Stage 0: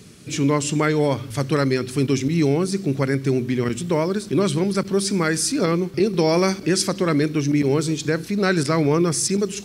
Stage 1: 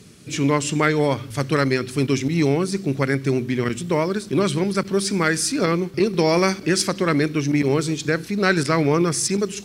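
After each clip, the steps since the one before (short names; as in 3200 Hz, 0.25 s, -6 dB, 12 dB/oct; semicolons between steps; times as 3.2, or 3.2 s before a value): dynamic EQ 1900 Hz, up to +4 dB, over -34 dBFS, Q 0.73; added harmonics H 3 -24 dB, 7 -41 dB, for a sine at -5 dBFS; gain +1 dB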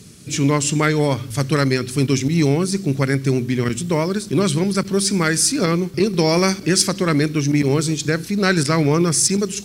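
tone controls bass +5 dB, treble +7 dB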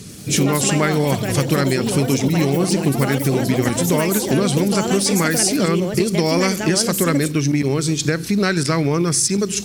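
compressor 5:1, threshold -21 dBFS, peak gain reduction 9.5 dB; echoes that change speed 92 ms, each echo +5 st, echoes 3, each echo -6 dB; gain +6 dB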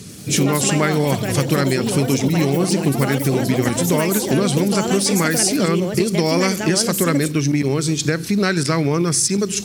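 HPF 59 Hz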